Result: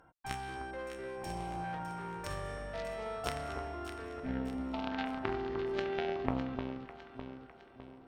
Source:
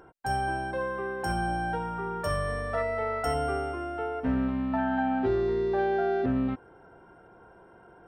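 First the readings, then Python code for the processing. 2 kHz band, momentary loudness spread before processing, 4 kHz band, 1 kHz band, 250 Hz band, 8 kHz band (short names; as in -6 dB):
-9.0 dB, 6 LU, -2.0 dB, -10.0 dB, -9.0 dB, -6.0 dB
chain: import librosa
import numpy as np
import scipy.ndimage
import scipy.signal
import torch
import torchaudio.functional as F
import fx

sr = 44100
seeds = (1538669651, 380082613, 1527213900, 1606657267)

y = fx.cheby_harmonics(x, sr, harmonics=(2, 3, 4, 5), levels_db=(-21, -6, -24, -16), full_scale_db=-16.0)
y = fx.filter_lfo_notch(y, sr, shape='saw_up', hz=0.61, low_hz=380.0, high_hz=2000.0, q=1.9)
y = fx.echo_alternate(y, sr, ms=303, hz=1300.0, feedback_pct=69, wet_db=-6.0)
y = y * librosa.db_to_amplitude(3.0)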